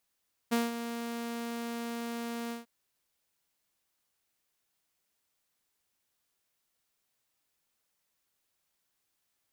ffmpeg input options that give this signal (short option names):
-f lavfi -i "aevalsrc='0.0794*(2*mod(234*t,1)-1)':d=2.145:s=44100,afade=t=in:d=0.019,afade=t=out:st=0.019:d=0.18:silence=0.299,afade=t=out:st=2:d=0.145"